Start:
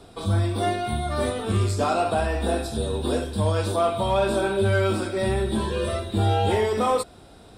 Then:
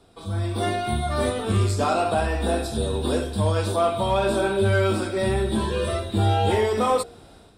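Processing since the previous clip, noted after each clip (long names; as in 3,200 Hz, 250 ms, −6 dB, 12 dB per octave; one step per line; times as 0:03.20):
hum removal 58.84 Hz, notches 13
automatic gain control gain up to 11.5 dB
level −8 dB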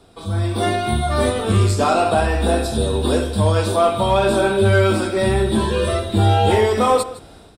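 single-tap delay 160 ms −17 dB
level +5.5 dB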